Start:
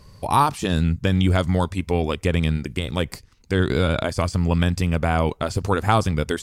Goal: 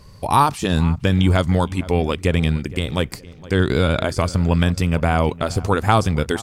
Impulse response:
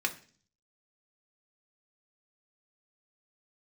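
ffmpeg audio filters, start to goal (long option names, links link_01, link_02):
-filter_complex "[0:a]asplit=2[link_01][link_02];[link_02]adelay=464,lowpass=frequency=2300:poles=1,volume=-18.5dB,asplit=2[link_03][link_04];[link_04]adelay=464,lowpass=frequency=2300:poles=1,volume=0.37,asplit=2[link_05][link_06];[link_06]adelay=464,lowpass=frequency=2300:poles=1,volume=0.37[link_07];[link_01][link_03][link_05][link_07]amix=inputs=4:normalize=0,volume=2.5dB"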